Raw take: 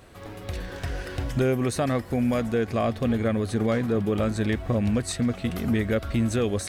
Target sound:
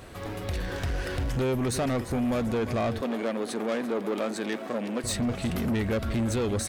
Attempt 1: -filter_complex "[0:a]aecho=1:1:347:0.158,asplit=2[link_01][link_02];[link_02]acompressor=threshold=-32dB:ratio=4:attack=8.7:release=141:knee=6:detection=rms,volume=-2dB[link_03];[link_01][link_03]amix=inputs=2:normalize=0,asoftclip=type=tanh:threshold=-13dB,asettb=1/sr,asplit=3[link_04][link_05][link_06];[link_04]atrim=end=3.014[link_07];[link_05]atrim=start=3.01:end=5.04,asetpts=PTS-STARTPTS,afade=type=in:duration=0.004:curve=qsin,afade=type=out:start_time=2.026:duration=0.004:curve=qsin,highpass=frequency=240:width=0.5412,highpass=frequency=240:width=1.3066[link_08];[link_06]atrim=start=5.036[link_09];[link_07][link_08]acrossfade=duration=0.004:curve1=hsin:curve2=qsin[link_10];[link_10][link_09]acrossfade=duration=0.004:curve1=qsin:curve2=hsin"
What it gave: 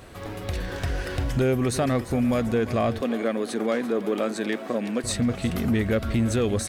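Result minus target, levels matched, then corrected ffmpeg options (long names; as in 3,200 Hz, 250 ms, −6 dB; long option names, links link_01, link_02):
soft clipping: distortion −13 dB
-filter_complex "[0:a]aecho=1:1:347:0.158,asplit=2[link_01][link_02];[link_02]acompressor=threshold=-32dB:ratio=4:attack=8.7:release=141:knee=6:detection=rms,volume=-2dB[link_03];[link_01][link_03]amix=inputs=2:normalize=0,asoftclip=type=tanh:threshold=-23dB,asettb=1/sr,asplit=3[link_04][link_05][link_06];[link_04]atrim=end=3.014[link_07];[link_05]atrim=start=3.01:end=5.04,asetpts=PTS-STARTPTS,afade=type=in:duration=0.004:curve=qsin,afade=type=out:start_time=2.026:duration=0.004:curve=qsin,highpass=frequency=240:width=0.5412,highpass=frequency=240:width=1.3066[link_08];[link_06]atrim=start=5.036[link_09];[link_07][link_08]acrossfade=duration=0.004:curve1=hsin:curve2=qsin[link_10];[link_10][link_09]acrossfade=duration=0.004:curve1=qsin:curve2=hsin"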